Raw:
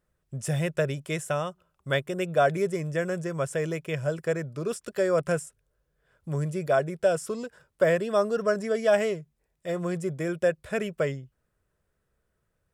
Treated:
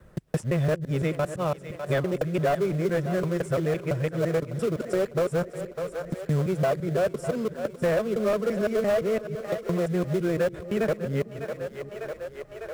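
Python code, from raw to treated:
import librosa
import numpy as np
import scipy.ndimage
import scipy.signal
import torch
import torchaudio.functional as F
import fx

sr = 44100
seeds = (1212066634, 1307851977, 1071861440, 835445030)

p1 = fx.local_reverse(x, sr, ms=170.0)
p2 = fx.high_shelf(p1, sr, hz=2700.0, db=-12.0)
p3 = fx.sample_hold(p2, sr, seeds[0], rate_hz=1800.0, jitter_pct=20)
p4 = p2 + (p3 * librosa.db_to_amplitude(-11.5))
p5 = 10.0 ** (-18.0 / 20.0) * np.tanh(p4 / 10.0 ** (-18.0 / 20.0))
p6 = p5 + fx.echo_split(p5, sr, split_hz=420.0, low_ms=224, high_ms=601, feedback_pct=52, wet_db=-14.0, dry=0)
p7 = fx.band_squash(p6, sr, depth_pct=70)
y = p7 * librosa.db_to_amplitude(2.0)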